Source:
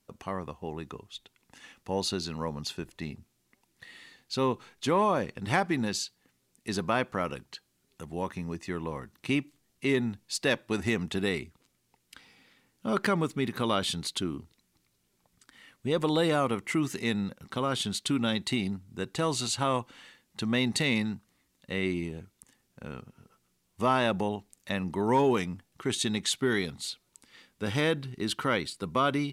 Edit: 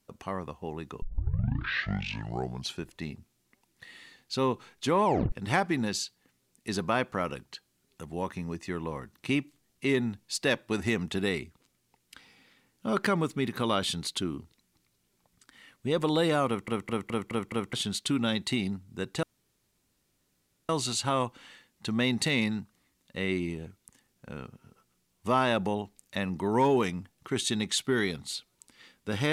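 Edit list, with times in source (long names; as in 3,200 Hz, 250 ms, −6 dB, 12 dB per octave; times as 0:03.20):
0:01.02: tape start 1.80 s
0:05.05: tape stop 0.27 s
0:16.47: stutter in place 0.21 s, 6 plays
0:19.23: splice in room tone 1.46 s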